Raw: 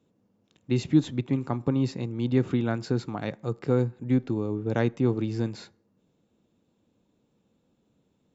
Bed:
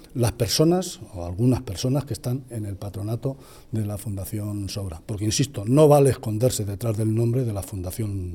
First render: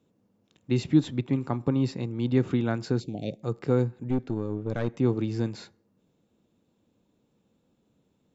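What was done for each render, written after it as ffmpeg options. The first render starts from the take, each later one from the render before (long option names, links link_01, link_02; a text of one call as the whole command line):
ffmpeg -i in.wav -filter_complex "[0:a]asettb=1/sr,asplit=3[link_01][link_02][link_03];[link_01]atrim=end=0.794[link_04];[link_02]atrim=start=0.79:end=2.36,asetpts=PTS-STARTPTS,afade=type=in:duration=0.004:curve=qsin,afade=type=out:start_time=1.566:duration=0.004:curve=qsin,bandreject=frequency=6500:width=13[link_05];[link_03]atrim=start=2.356[link_06];[link_04][link_05]acrossfade=duration=0.004:curve1=hsin:curve2=qsin[link_07];[link_07][link_06]acrossfade=duration=0.004:curve1=qsin:curve2=hsin,asplit=3[link_08][link_09][link_10];[link_08]afade=type=out:start_time=2.99:duration=0.02[link_11];[link_09]asuperstop=centerf=1300:order=8:qfactor=0.68,afade=type=in:start_time=2.99:duration=0.02,afade=type=out:start_time=3.42:duration=0.02[link_12];[link_10]afade=type=in:start_time=3.42:duration=0.02[link_13];[link_11][link_12][link_13]amix=inputs=3:normalize=0,asettb=1/sr,asplit=3[link_14][link_15][link_16];[link_14]atrim=end=4.094[link_17];[link_15]atrim=start=4.09:end=4.94,asetpts=PTS-STARTPTS,afade=type=in:duration=0.004:curve=qsin,afade=type=out:start_time=0.846:duration=0.004:curve=qsin,aeval=exprs='(tanh(10*val(0)+0.55)-tanh(0.55))/10':channel_layout=same[link_18];[link_16]atrim=start=4.936[link_19];[link_17][link_18]acrossfade=duration=0.004:curve1=hsin:curve2=qsin[link_20];[link_20][link_19]acrossfade=duration=0.004:curve1=qsin:curve2=hsin" out.wav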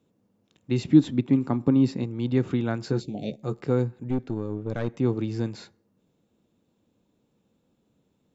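ffmpeg -i in.wav -filter_complex "[0:a]asettb=1/sr,asplit=3[link_01][link_02][link_03];[link_01]atrim=end=0.854[link_04];[link_02]atrim=start=0.85:end=2.04,asetpts=PTS-STARTPTS,afade=type=in:duration=0.004:curve=qsin,afade=type=out:start_time=1.186:duration=0.004:curve=qsin,equalizer=frequency=250:width=1.5:gain=7[link_05];[link_03]atrim=start=2.036[link_06];[link_04][link_05]acrossfade=duration=0.004:curve1=hsin:curve2=qsin[link_07];[link_07][link_06]acrossfade=duration=0.004:curve1=qsin:curve2=hsin,asettb=1/sr,asplit=3[link_08][link_09][link_10];[link_08]atrim=end=2.834[link_11];[link_09]atrim=start=2.83:end=3.62,asetpts=PTS-STARTPTS,afade=type=in:duration=0.004:curve=qsin,afade=type=out:start_time=0.786:duration=0.004:curve=qsin,asplit=2[link_12][link_13];[link_13]adelay=14,volume=-6dB[link_14];[link_12][link_14]amix=inputs=2:normalize=0,atrim=end_sample=34839[link_15];[link_10]atrim=start=3.616[link_16];[link_11][link_15]acrossfade=duration=0.004:curve1=hsin:curve2=qsin[link_17];[link_17][link_16]acrossfade=duration=0.004:curve1=qsin:curve2=hsin" out.wav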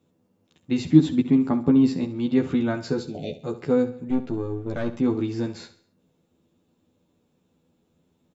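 ffmpeg -i in.wav -filter_complex "[0:a]asplit=2[link_01][link_02];[link_02]adelay=12,volume=-2dB[link_03];[link_01][link_03]amix=inputs=2:normalize=0,aecho=1:1:68|136|204|272:0.2|0.0838|0.0352|0.0148" out.wav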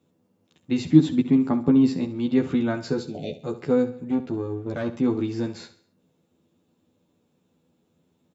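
ffmpeg -i in.wav -af "highpass=79" out.wav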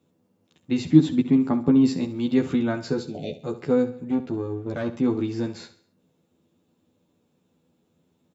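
ffmpeg -i in.wav -filter_complex "[0:a]asettb=1/sr,asplit=3[link_01][link_02][link_03];[link_01]atrim=end=1.854[link_04];[link_02]atrim=start=1.85:end=2.56,asetpts=PTS-STARTPTS,afade=type=in:duration=0.004:curve=qsin,afade=type=out:start_time=0.706:duration=0.004:curve=qsin,highshelf=frequency=5200:gain=8.5[link_05];[link_03]atrim=start=2.556[link_06];[link_04][link_05]acrossfade=duration=0.004:curve1=hsin:curve2=qsin[link_07];[link_07][link_06]acrossfade=duration=0.004:curve1=qsin:curve2=hsin" out.wav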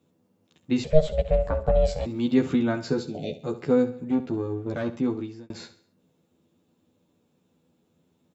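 ffmpeg -i in.wav -filter_complex "[0:a]asettb=1/sr,asplit=3[link_01][link_02][link_03];[link_01]atrim=end=0.844[link_04];[link_02]atrim=start=0.84:end=2.06,asetpts=PTS-STARTPTS,afade=type=in:duration=0.004:curve=qsin,afade=type=out:start_time=1.216:duration=0.004:curve=qsin,aeval=exprs='val(0)*sin(2*PI*310*n/s)':channel_layout=same[link_05];[link_03]atrim=start=2.056[link_06];[link_04][link_05]acrossfade=duration=0.004:curve1=hsin:curve2=qsin[link_07];[link_07][link_06]acrossfade=duration=0.004:curve1=qsin:curve2=hsin,asplit=2[link_08][link_09];[link_08]atrim=end=5.5,asetpts=PTS-STARTPTS,afade=type=out:start_time=4.58:duration=0.92:curve=qsin[link_10];[link_09]atrim=start=5.5,asetpts=PTS-STARTPTS,afade=type=in:duration=0.004:curve=hsin[link_11];[link_10][link_11]concat=n=2:v=0:a=1" out.wav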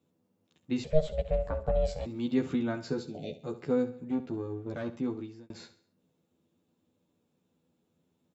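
ffmpeg -i in.wav -af "volume=-7dB" out.wav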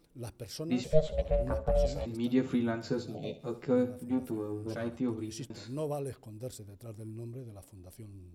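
ffmpeg -i in.wav -i bed.wav -filter_complex "[1:a]volume=-20.5dB[link_01];[0:a][link_01]amix=inputs=2:normalize=0" out.wav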